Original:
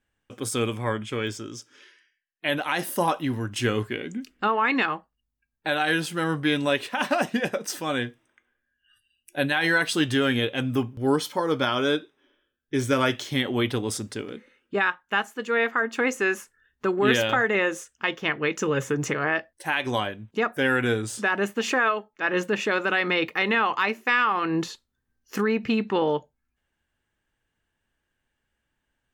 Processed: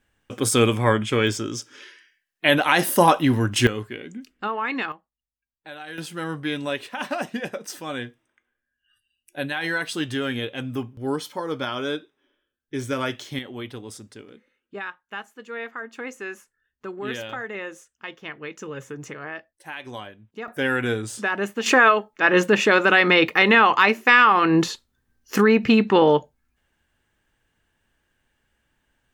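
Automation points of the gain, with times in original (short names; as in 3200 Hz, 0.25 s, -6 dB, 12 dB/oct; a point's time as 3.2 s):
+8 dB
from 3.67 s -4 dB
from 4.92 s -14 dB
from 5.98 s -4 dB
from 13.39 s -10 dB
from 20.48 s -0.5 dB
from 21.66 s +7.5 dB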